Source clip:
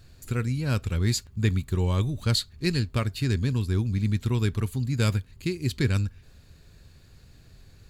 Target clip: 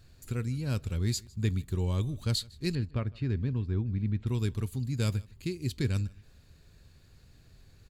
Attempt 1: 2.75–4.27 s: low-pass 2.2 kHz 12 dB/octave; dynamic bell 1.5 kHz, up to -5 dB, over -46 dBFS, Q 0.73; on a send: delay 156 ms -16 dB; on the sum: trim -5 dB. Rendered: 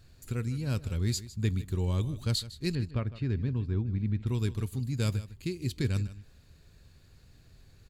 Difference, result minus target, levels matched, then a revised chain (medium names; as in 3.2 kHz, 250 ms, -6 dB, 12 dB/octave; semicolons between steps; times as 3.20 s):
echo-to-direct +9 dB
2.75–4.27 s: low-pass 2.2 kHz 12 dB/octave; dynamic bell 1.5 kHz, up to -5 dB, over -46 dBFS, Q 0.73; on a send: delay 156 ms -25 dB; on the sum: trim -5 dB